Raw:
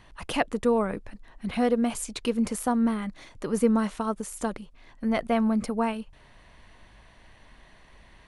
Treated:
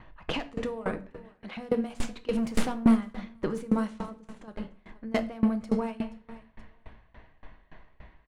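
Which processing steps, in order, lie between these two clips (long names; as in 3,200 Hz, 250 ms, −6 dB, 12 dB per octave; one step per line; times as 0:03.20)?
stylus tracing distortion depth 0.11 ms
low-pass that shuts in the quiet parts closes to 2,000 Hz, open at −19.5 dBFS
0:01.07–0:01.57: high-pass filter 480 Hz
in parallel at +1 dB: speech leveller within 3 dB 2 s
on the sum: brickwall limiter −14 dBFS, peak gain reduction 11.5 dB
0:02.33–0:02.95: leveller curve on the samples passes 2
0:04.00–0:04.48: output level in coarse steps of 17 dB
repeating echo 477 ms, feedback 33%, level −22.5 dB
rectangular room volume 220 cubic metres, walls mixed, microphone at 0.56 metres
tremolo with a ramp in dB decaying 3.5 Hz, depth 23 dB
level −1.5 dB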